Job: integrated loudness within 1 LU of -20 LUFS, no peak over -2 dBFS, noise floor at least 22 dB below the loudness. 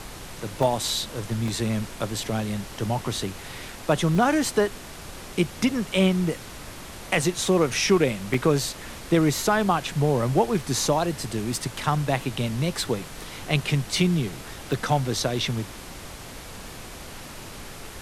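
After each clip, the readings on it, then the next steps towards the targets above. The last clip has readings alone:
dropouts 5; longest dropout 1.9 ms; noise floor -40 dBFS; noise floor target -47 dBFS; loudness -25.0 LUFS; peak level -9.0 dBFS; loudness target -20.0 LUFS
-> interpolate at 0.63/1.48/4.15/8.34/14.73 s, 1.9 ms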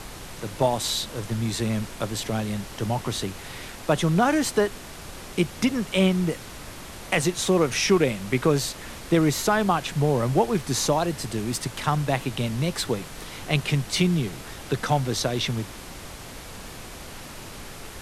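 dropouts 0; noise floor -40 dBFS; noise floor target -47 dBFS
-> noise print and reduce 7 dB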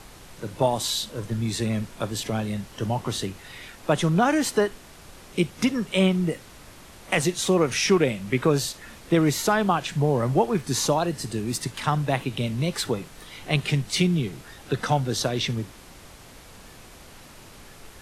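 noise floor -47 dBFS; loudness -25.0 LUFS; peak level -9.0 dBFS; loudness target -20.0 LUFS
-> trim +5 dB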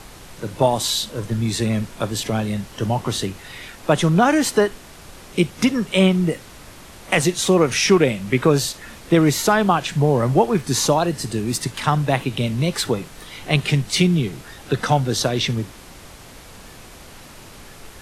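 loudness -20.0 LUFS; peak level -4.0 dBFS; noise floor -42 dBFS

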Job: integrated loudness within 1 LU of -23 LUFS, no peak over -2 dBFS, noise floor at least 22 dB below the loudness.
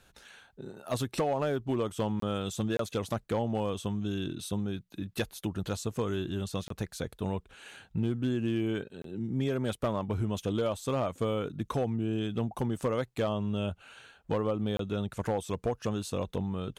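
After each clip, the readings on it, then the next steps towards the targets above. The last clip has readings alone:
clipped samples 0.6%; clipping level -22.5 dBFS; dropouts 5; longest dropout 23 ms; loudness -33.0 LUFS; peak level -22.5 dBFS; loudness target -23.0 LUFS
-> clip repair -22.5 dBFS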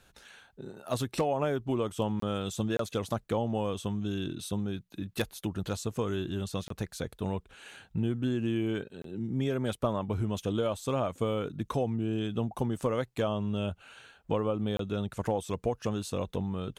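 clipped samples 0.0%; dropouts 5; longest dropout 23 ms
-> interpolate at 2.20/2.77/6.68/9.02/14.77 s, 23 ms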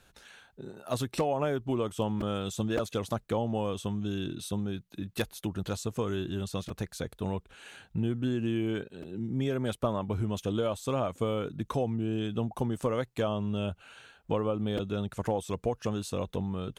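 dropouts 0; loudness -32.5 LUFS; peak level -13.5 dBFS; loudness target -23.0 LUFS
-> trim +9.5 dB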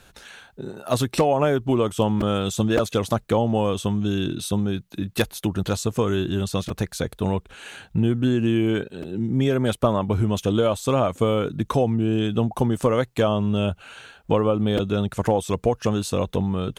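loudness -23.0 LUFS; peak level -4.0 dBFS; noise floor -57 dBFS

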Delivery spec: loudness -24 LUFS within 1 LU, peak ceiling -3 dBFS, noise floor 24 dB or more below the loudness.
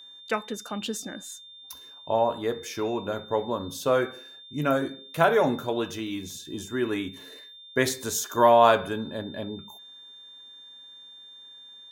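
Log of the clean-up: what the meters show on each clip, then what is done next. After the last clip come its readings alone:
steady tone 3.6 kHz; tone level -45 dBFS; loudness -26.5 LUFS; peak level -4.5 dBFS; loudness target -24.0 LUFS
-> band-stop 3.6 kHz, Q 30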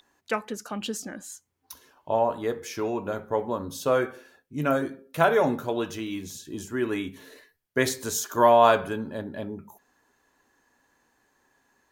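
steady tone not found; loudness -26.5 LUFS; peak level -4.5 dBFS; loudness target -24.0 LUFS
-> trim +2.5 dB; peak limiter -3 dBFS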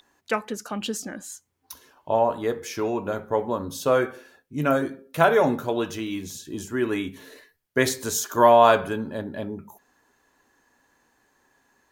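loudness -24.0 LUFS; peak level -3.0 dBFS; noise floor -69 dBFS

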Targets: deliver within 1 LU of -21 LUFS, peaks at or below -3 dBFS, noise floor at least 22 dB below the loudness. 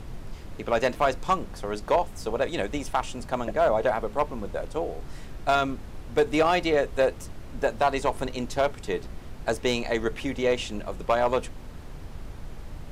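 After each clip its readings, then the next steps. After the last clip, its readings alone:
clipped samples 0.4%; clipping level -14.0 dBFS; noise floor -41 dBFS; noise floor target -49 dBFS; loudness -27.0 LUFS; peak level -14.0 dBFS; loudness target -21.0 LUFS
-> clip repair -14 dBFS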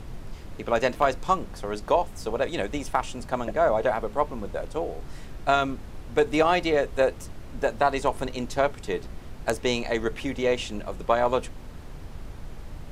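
clipped samples 0.0%; noise floor -41 dBFS; noise floor target -49 dBFS
-> noise print and reduce 8 dB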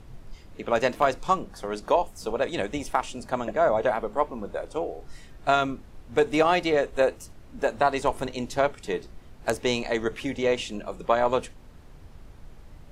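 noise floor -48 dBFS; noise floor target -49 dBFS
-> noise print and reduce 6 dB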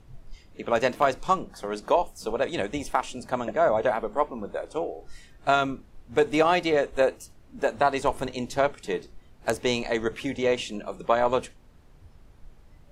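noise floor -53 dBFS; loudness -26.5 LUFS; peak level -5.0 dBFS; loudness target -21.0 LUFS
-> trim +5.5 dB; peak limiter -3 dBFS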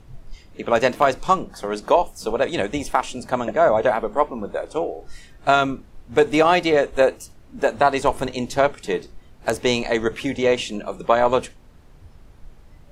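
loudness -21.0 LUFS; peak level -3.0 dBFS; noise floor -48 dBFS

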